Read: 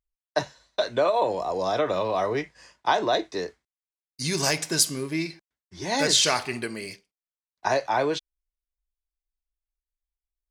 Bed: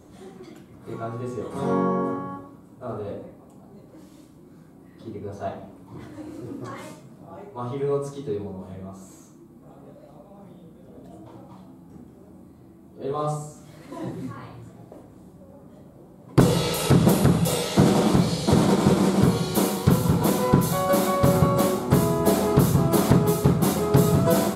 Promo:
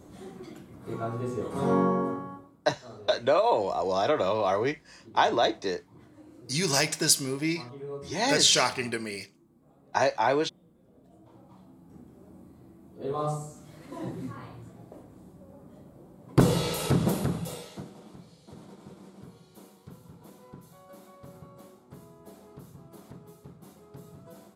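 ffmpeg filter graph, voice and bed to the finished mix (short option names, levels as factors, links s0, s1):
-filter_complex "[0:a]adelay=2300,volume=0.944[s0];[1:a]volume=2.82,afade=t=out:st=1.81:d=0.76:silence=0.237137,afade=t=in:st=11.08:d=1.26:silence=0.316228,afade=t=out:st=16.46:d=1.42:silence=0.0501187[s1];[s0][s1]amix=inputs=2:normalize=0"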